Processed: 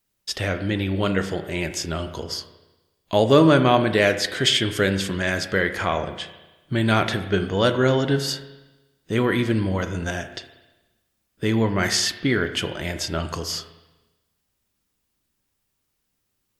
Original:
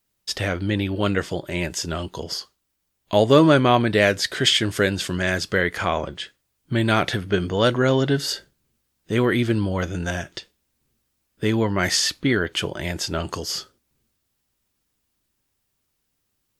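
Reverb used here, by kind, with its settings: spring tank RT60 1.1 s, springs 31/36 ms, chirp 50 ms, DRR 8.5 dB; gain -1 dB

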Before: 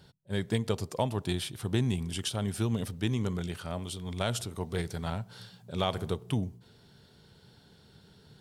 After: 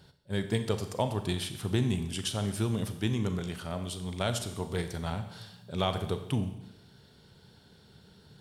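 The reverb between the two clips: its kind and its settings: Schroeder reverb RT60 0.95 s, combs from 29 ms, DRR 8.5 dB

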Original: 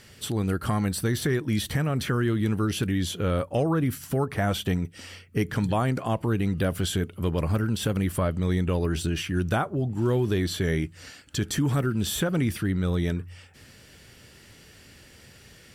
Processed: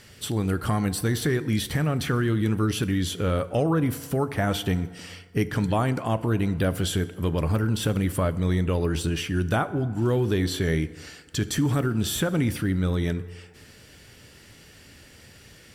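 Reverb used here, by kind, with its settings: FDN reverb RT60 1.6 s, low-frequency decay 0.75×, high-frequency decay 0.55×, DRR 13.5 dB; gain +1 dB

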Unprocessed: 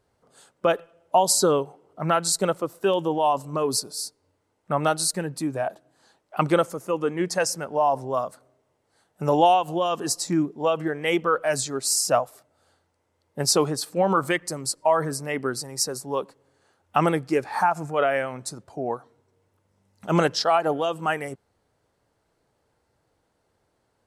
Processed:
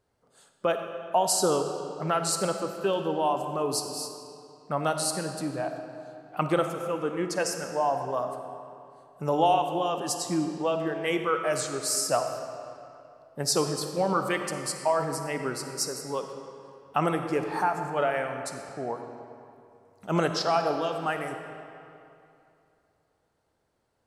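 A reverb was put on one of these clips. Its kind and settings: digital reverb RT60 2.7 s, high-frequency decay 0.75×, pre-delay 10 ms, DRR 5.5 dB; gain -5 dB

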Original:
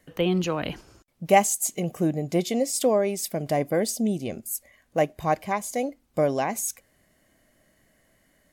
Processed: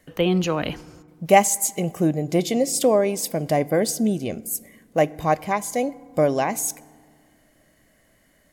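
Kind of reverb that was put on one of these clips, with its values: FDN reverb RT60 1.8 s, low-frequency decay 1.35×, high-frequency decay 0.45×, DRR 19.5 dB; gain +3.5 dB

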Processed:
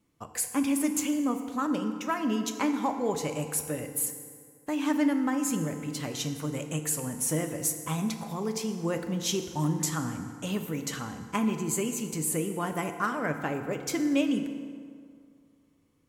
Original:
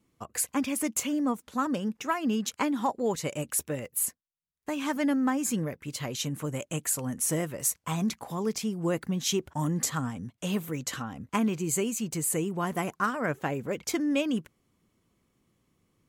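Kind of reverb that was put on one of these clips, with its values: FDN reverb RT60 2.2 s, low-frequency decay 0.95×, high-frequency decay 0.6×, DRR 6 dB; gain -1.5 dB

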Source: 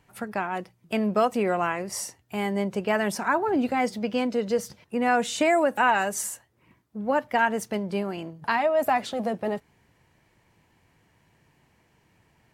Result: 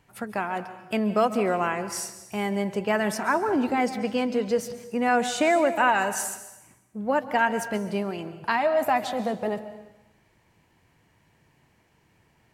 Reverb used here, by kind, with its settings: plate-style reverb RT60 0.97 s, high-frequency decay 0.95×, pre-delay 0.12 s, DRR 11.5 dB

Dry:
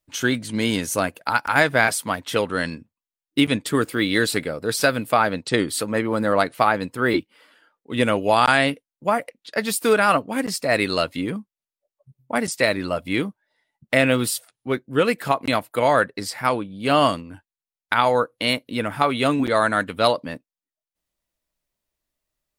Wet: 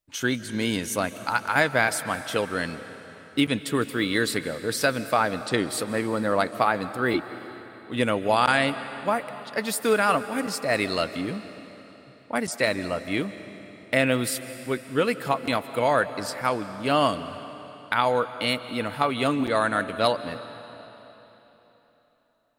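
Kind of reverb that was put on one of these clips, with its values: digital reverb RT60 3.7 s, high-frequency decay 0.95×, pre-delay 0.11 s, DRR 12.5 dB; gain -4 dB

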